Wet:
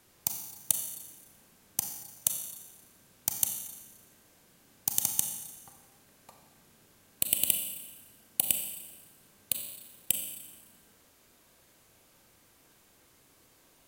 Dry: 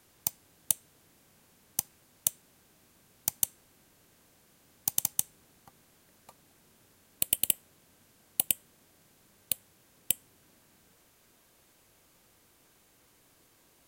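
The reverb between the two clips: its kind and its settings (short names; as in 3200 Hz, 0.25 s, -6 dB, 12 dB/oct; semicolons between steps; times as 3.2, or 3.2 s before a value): Schroeder reverb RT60 1.2 s, combs from 29 ms, DRR 4 dB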